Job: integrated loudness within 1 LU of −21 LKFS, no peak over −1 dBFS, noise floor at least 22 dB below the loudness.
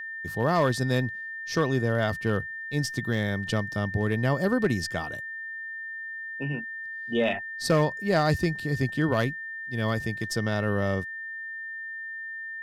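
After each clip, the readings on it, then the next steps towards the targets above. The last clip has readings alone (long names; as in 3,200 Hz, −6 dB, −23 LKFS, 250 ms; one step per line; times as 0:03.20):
share of clipped samples 0.3%; peaks flattened at −15.5 dBFS; interfering tone 1,800 Hz; level of the tone −34 dBFS; integrated loudness −28.0 LKFS; sample peak −15.5 dBFS; target loudness −21.0 LKFS
→ clipped peaks rebuilt −15.5 dBFS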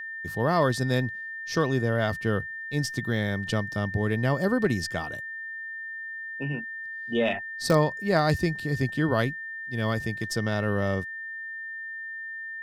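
share of clipped samples 0.0%; interfering tone 1,800 Hz; level of the tone −34 dBFS
→ notch filter 1,800 Hz, Q 30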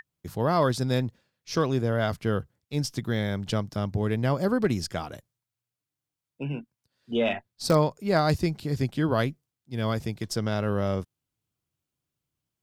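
interfering tone none found; integrated loudness −27.5 LKFS; sample peak −9.5 dBFS; target loudness −21.0 LKFS
→ level +6.5 dB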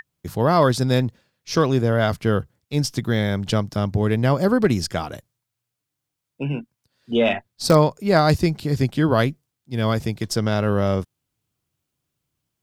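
integrated loudness −21.0 LKFS; sample peak −3.0 dBFS; background noise floor −82 dBFS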